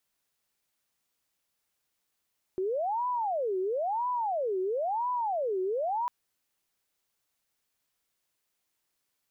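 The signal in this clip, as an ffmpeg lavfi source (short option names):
-f lavfi -i "aevalsrc='0.0447*sin(2*PI*(682.5*t-312.5/(2*PI*0.99)*sin(2*PI*0.99*t)))':d=3.5:s=44100"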